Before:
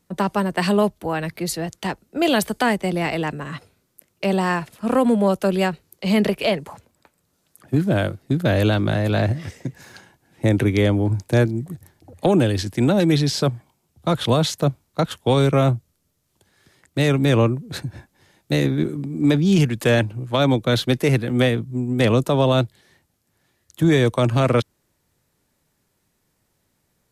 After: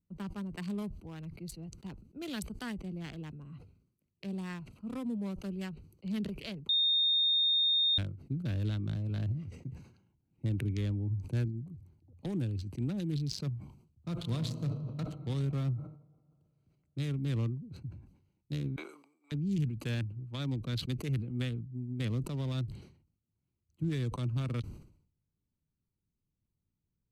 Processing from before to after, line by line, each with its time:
6.69–7.98 bleep 3670 Hz -10 dBFS
14.08–15.02 reverb throw, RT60 2.8 s, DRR 3.5 dB
18.76–19.32 HPF 790 Hz 24 dB/oct
whole clip: Wiener smoothing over 25 samples; passive tone stack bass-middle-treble 6-0-2; sustainer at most 93 dB/s; gain +2 dB

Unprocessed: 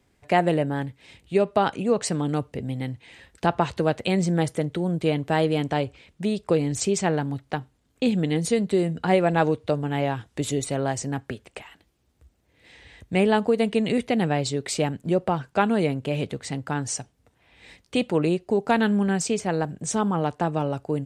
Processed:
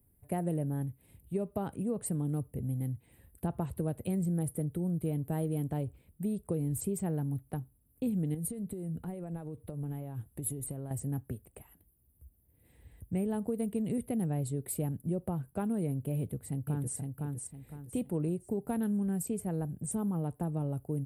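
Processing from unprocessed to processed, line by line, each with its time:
8.34–10.91 compressor 12:1, threshold -27 dBFS
16.16–16.96 echo throw 0.51 s, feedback 35%, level -4 dB
whole clip: EQ curve 100 Hz 0 dB, 1700 Hz -22 dB, 6200 Hz -28 dB, 11000 Hz +13 dB; compressor, threshold -28 dBFS

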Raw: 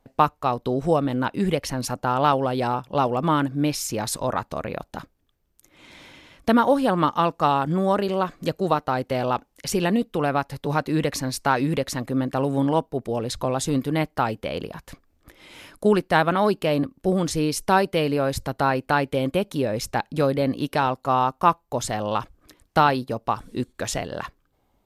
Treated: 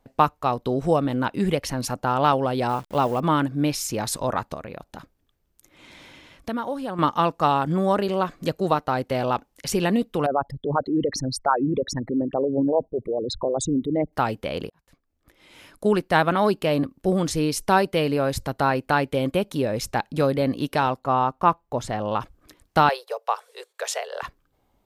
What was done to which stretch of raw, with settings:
2.69–3.2 level-crossing sampler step -40.5 dBFS
4.54–6.99 compressor 1.5:1, threshold -43 dBFS
10.26–14.13 formant sharpening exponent 3
14.7–16.19 fade in
20.99–22.21 high shelf 3900 Hz -11.5 dB
22.89–24.23 steep high-pass 420 Hz 96 dB/oct

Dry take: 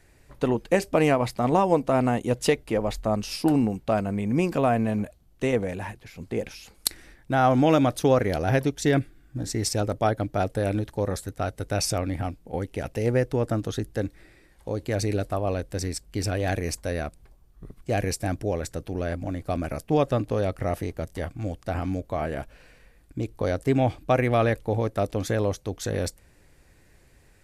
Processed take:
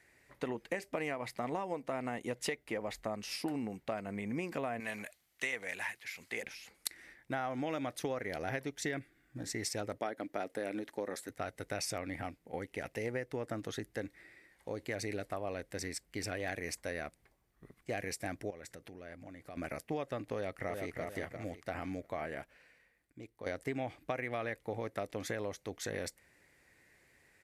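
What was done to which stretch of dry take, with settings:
4.8–6.43 tilt shelf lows -10 dB, about 850 Hz
9.98–11.3 resonant low shelf 170 Hz -11.5 dB, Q 1.5
18.5–19.57 compressor 5:1, threshold -36 dBFS
20.34–21.01 echo throw 0.35 s, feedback 30%, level -5.5 dB
22.11–23.46 fade out quadratic, to -10 dB
whole clip: HPF 250 Hz 6 dB/oct; bell 2000 Hz +9.5 dB 0.5 oct; compressor 6:1, threshold -26 dBFS; gain -7.5 dB

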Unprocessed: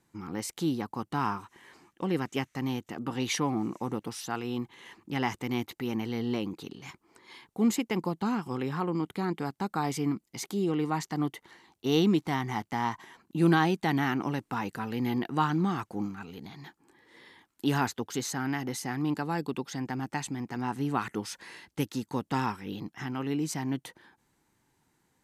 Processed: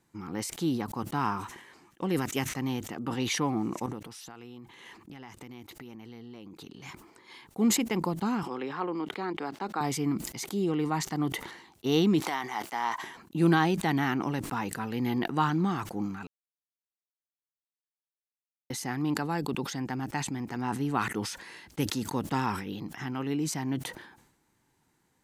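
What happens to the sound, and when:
2.09–2.49 high shelf 7600 Hz +11.5 dB
3.86–6.83 compressor 12:1, threshold -42 dBFS
8.43–9.81 three-band isolator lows -21 dB, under 250 Hz, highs -16 dB, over 5300 Hz
12.2–13.03 HPF 490 Hz
16.27–18.7 mute
whole clip: sustainer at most 69 dB/s

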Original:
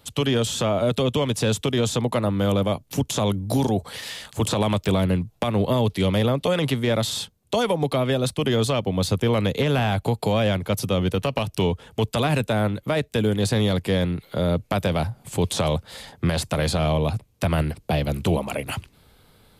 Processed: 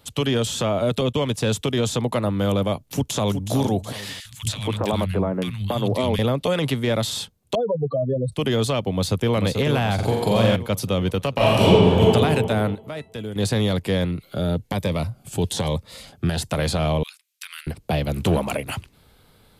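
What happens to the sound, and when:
1.01–1.51 gate -30 dBFS, range -12 dB
2.85–3.55 echo throw 0.37 s, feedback 40%, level -9 dB
4.2–6.19 three bands offset in time highs, lows, mids 50/280 ms, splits 160/1600 Hz
7.55–8.32 spectral contrast raised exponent 3.5
8.92–9.34 echo throw 0.44 s, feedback 55%, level -5.5 dB
9.94–10.56 flutter echo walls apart 7.6 m, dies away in 0.88 s
11.34–12.01 reverb throw, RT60 2.1 s, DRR -10.5 dB
12.75–13.36 resonator 660 Hz, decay 0.22 s, mix 70%
14.11–16.5 cascading phaser rising 1.1 Hz
17.03–17.67 Bessel high-pass 2500 Hz, order 8
18.17–18.57 sample leveller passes 1

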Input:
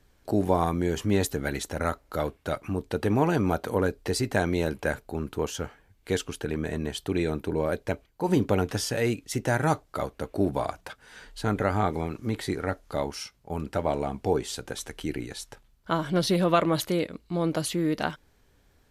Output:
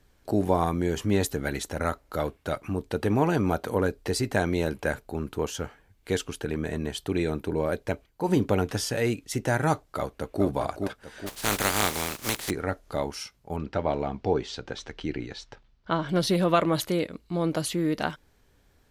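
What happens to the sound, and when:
9.97–10.45 echo throw 0.42 s, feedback 50%, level -6 dB
11.26–12.49 spectral contrast lowered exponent 0.3
13.56–16.09 LPF 5400 Hz 24 dB/oct

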